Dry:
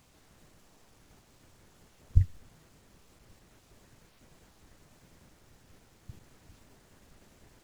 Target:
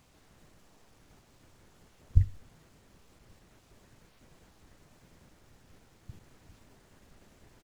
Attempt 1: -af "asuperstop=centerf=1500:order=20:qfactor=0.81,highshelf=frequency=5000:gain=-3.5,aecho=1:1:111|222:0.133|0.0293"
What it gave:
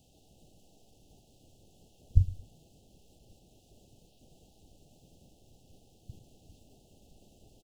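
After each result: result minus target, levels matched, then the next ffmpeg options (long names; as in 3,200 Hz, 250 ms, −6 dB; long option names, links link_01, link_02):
echo 50 ms late; 2,000 Hz band −13.5 dB
-af "asuperstop=centerf=1500:order=20:qfactor=0.81,highshelf=frequency=5000:gain=-3.5,aecho=1:1:61|122:0.133|0.0293"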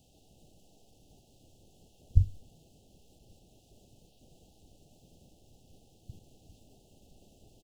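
2,000 Hz band −14.0 dB
-af "highshelf=frequency=5000:gain=-3.5,aecho=1:1:61|122:0.133|0.0293"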